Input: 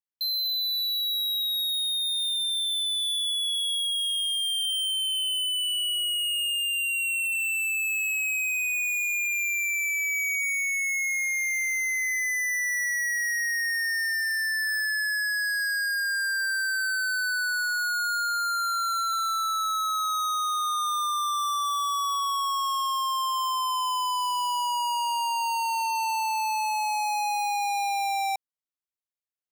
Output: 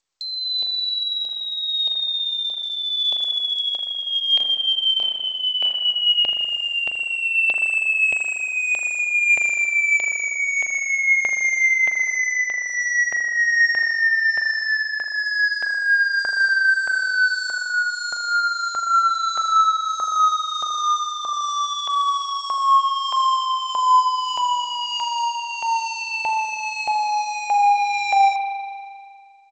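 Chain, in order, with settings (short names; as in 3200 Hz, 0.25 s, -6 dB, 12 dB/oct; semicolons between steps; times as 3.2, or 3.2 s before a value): comb 3.8 ms, depth 45%; compressor 4:1, threshold -28 dBFS, peak gain reduction 3.5 dB; LFO high-pass saw up 1.6 Hz 670–2700 Hz; 4.01–6.18 flutter echo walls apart 4.9 m, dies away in 0.28 s; spring tank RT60 2.1 s, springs 39 ms, chirp 65 ms, DRR 3.5 dB; gain +3.5 dB; G.722 64 kbps 16000 Hz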